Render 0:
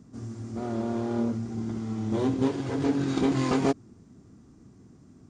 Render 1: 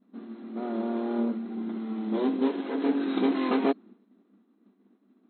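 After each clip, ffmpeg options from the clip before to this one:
-af "agate=range=-33dB:threshold=-45dB:ratio=3:detection=peak,afftfilt=real='re*between(b*sr/4096,190,4200)':imag='im*between(b*sr/4096,190,4200)':win_size=4096:overlap=0.75"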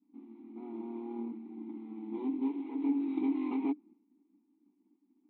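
-filter_complex "[0:a]asplit=3[a][b][c];[a]bandpass=f=300:t=q:w=8,volume=0dB[d];[b]bandpass=f=870:t=q:w=8,volume=-6dB[e];[c]bandpass=f=2.24k:t=q:w=8,volume=-9dB[f];[d][e][f]amix=inputs=3:normalize=0"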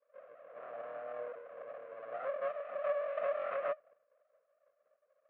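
-af "aeval=exprs='abs(val(0))':c=same,afreqshift=20,highpass=f=330:w=0.5412,highpass=f=330:w=1.3066,equalizer=f=360:t=q:w=4:g=-6,equalizer=f=900:t=q:w=4:g=-7,equalizer=f=1.4k:t=q:w=4:g=6,lowpass=f=2.4k:w=0.5412,lowpass=f=2.4k:w=1.3066,volume=4dB"

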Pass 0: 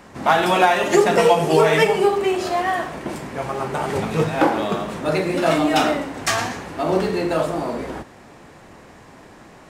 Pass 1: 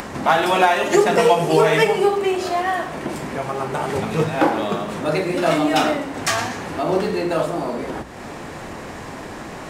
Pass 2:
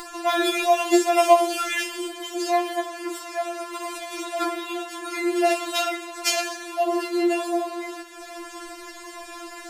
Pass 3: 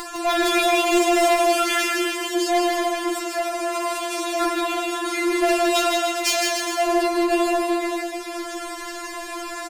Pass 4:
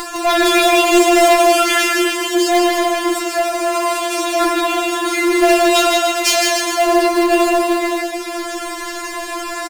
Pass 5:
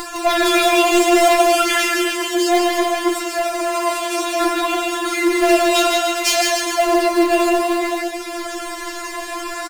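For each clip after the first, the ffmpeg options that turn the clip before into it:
-af "bandreject=f=60:t=h:w=6,bandreject=f=120:t=h:w=6,bandreject=f=180:t=h:w=6,acompressor=mode=upward:threshold=-21dB:ratio=2.5"
-af "highshelf=f=2.4k:g=10,afftfilt=real='re*4*eq(mod(b,16),0)':imag='im*4*eq(mod(b,16),0)':win_size=2048:overlap=0.75,volume=-5dB"
-af "asoftclip=type=tanh:threshold=-21dB,aecho=1:1:160|296|411.6|509.9|593.4:0.631|0.398|0.251|0.158|0.1,volume=5dB"
-filter_complex "[0:a]asplit=2[a][b];[b]acrusher=bits=2:mode=log:mix=0:aa=0.000001,volume=-8dB[c];[a][c]amix=inputs=2:normalize=0,asplit=2[d][e];[e]adelay=28,volume=-13dB[f];[d][f]amix=inputs=2:normalize=0,volume=3.5dB"
-af "flanger=delay=0.1:depth=8.8:regen=73:speed=0.6:shape=triangular,volume=2dB"

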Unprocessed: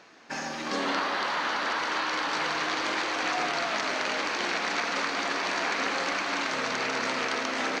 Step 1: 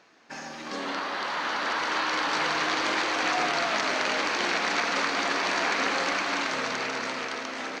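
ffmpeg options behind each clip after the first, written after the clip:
-af "dynaudnorm=f=330:g=9:m=7.5dB,volume=-5dB"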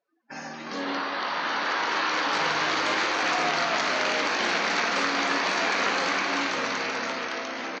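-filter_complex "[0:a]asplit=2[a][b];[b]aecho=0:1:21|39|57:0.376|0.266|0.422[c];[a][c]amix=inputs=2:normalize=0,afftdn=nr=32:nf=-47"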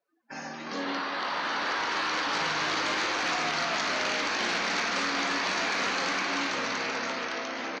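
-filter_complex "[0:a]acrossover=split=290|830|3500[a][b][c][d];[b]alimiter=level_in=6dB:limit=-24dB:level=0:latency=1:release=451,volume=-6dB[e];[c]asoftclip=type=tanh:threshold=-25dB[f];[a][e][f][d]amix=inputs=4:normalize=0,volume=-1dB"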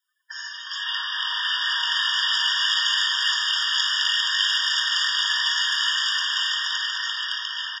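-af "highshelf=f=1.7k:t=q:w=3:g=9,afftfilt=real='re*eq(mod(floor(b*sr/1024/940),2),1)':imag='im*eq(mod(floor(b*sr/1024/940),2),1)':win_size=1024:overlap=0.75,volume=3.5dB"

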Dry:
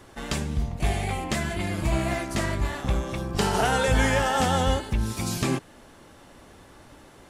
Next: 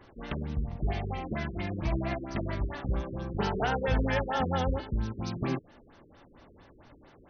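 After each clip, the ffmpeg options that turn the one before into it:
-af "afftfilt=real='re*lt(b*sr/1024,470*pow(6500/470,0.5+0.5*sin(2*PI*4.4*pts/sr)))':imag='im*lt(b*sr/1024,470*pow(6500/470,0.5+0.5*sin(2*PI*4.4*pts/sr)))':win_size=1024:overlap=0.75,volume=-5dB"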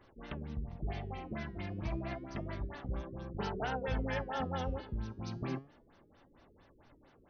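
-af "flanger=delay=1.5:depth=9.2:regen=88:speed=0.3:shape=triangular,volume=-3dB"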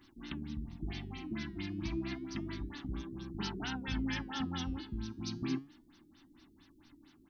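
-af "firequalizer=gain_entry='entry(130,0);entry(310,12);entry(480,-20);entry(880,-2);entry(2300,5);entry(3800,12)':delay=0.05:min_phase=1,volume=-3dB"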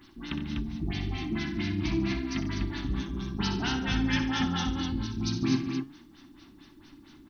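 -af "aecho=1:1:62|92|144|203|248:0.376|0.224|0.15|0.188|0.562,volume=7.5dB"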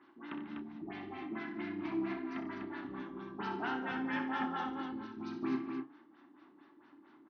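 -filter_complex "[0:a]asuperpass=centerf=760:order=4:qfactor=0.61,asplit=2[a][b];[b]adelay=31,volume=-11.5dB[c];[a][c]amix=inputs=2:normalize=0,volume=-1.5dB"

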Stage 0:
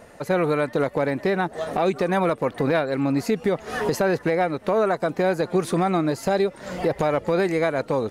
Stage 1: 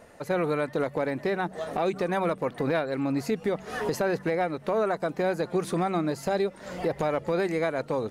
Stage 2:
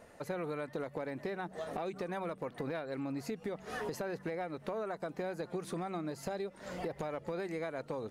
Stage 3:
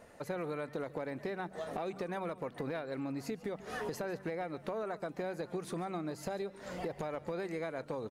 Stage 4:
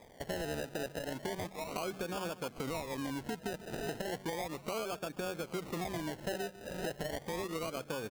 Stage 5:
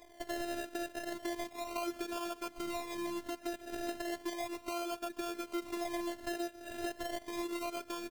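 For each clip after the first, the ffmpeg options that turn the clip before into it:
-af "bandreject=f=47.43:t=h:w=4,bandreject=f=94.86:t=h:w=4,bandreject=f=142.29:t=h:w=4,bandreject=f=189.72:t=h:w=4,bandreject=f=237.15:t=h:w=4,volume=-5dB"
-af "acompressor=threshold=-31dB:ratio=4,volume=-5dB"
-af "aecho=1:1:143:0.119"
-af "acrusher=samples=31:mix=1:aa=0.000001:lfo=1:lforange=18.6:lforate=0.34"
-af "afftfilt=real='hypot(re,im)*cos(PI*b)':imag='0':win_size=512:overlap=0.75,volume=3dB"

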